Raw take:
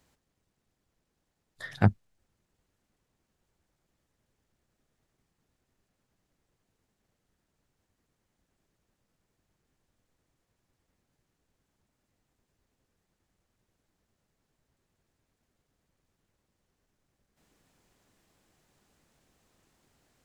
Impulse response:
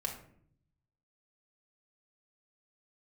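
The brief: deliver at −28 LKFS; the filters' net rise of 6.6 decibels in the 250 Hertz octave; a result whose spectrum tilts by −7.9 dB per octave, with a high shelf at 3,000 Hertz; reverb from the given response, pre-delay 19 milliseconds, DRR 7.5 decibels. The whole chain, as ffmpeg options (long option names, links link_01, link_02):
-filter_complex "[0:a]equalizer=frequency=250:width_type=o:gain=9,highshelf=frequency=3000:gain=-8,asplit=2[link_01][link_02];[1:a]atrim=start_sample=2205,adelay=19[link_03];[link_02][link_03]afir=irnorm=-1:irlink=0,volume=-9.5dB[link_04];[link_01][link_04]amix=inputs=2:normalize=0,volume=-4.5dB"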